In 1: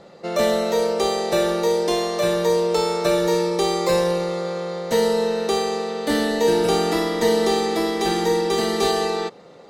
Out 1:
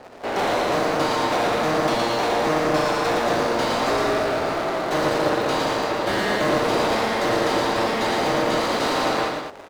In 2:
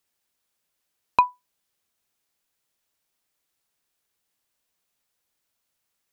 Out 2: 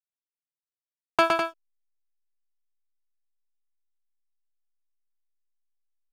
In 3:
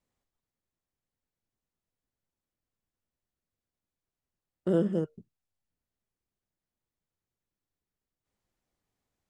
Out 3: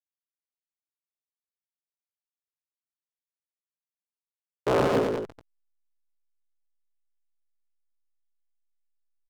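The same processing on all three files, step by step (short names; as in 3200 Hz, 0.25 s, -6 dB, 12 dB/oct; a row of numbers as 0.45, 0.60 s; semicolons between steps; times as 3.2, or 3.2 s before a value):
cycle switcher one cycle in 3, inverted; overdrive pedal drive 25 dB, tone 2800 Hz, clips at -4.5 dBFS; backlash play -30 dBFS; loudspeakers at several distances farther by 39 m -4 dB, 70 m -7 dB; normalise peaks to -12 dBFS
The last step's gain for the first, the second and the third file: -10.5, -6.5, -7.0 dB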